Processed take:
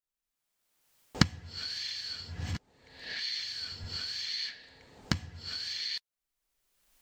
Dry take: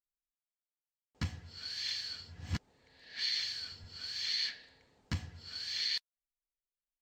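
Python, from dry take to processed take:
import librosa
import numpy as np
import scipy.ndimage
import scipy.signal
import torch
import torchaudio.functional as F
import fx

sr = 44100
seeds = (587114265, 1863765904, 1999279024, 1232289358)

y = fx.recorder_agc(x, sr, target_db=-27.0, rise_db_per_s=30.0, max_gain_db=30)
y = F.gain(torch.from_numpy(y), -1.5).numpy()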